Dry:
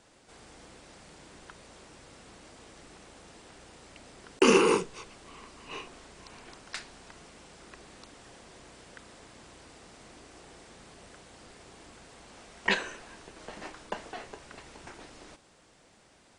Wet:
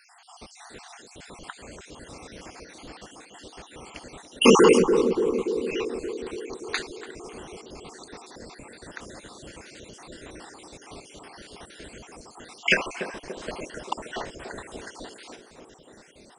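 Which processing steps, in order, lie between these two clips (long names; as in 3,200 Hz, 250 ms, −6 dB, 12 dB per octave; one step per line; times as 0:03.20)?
time-frequency cells dropped at random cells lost 60%
in parallel at +1 dB: brickwall limiter −19.5 dBFS, peak gain reduction 11 dB
on the sum: feedback echo with a band-pass in the loop 288 ms, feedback 72%, band-pass 370 Hz, level −5 dB
level +4.5 dB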